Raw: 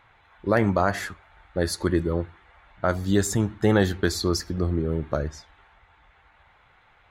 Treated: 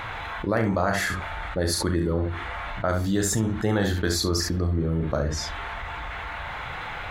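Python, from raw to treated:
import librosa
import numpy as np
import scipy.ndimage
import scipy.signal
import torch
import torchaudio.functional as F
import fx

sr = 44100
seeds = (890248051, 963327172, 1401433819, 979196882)

p1 = fx.notch(x, sr, hz=380.0, q=12.0)
p2 = p1 + fx.room_early_taps(p1, sr, ms=(36, 68), db=(-8.0, -9.5), dry=0)
p3 = fx.env_flatten(p2, sr, amount_pct=70)
y = p3 * 10.0 ** (-5.0 / 20.0)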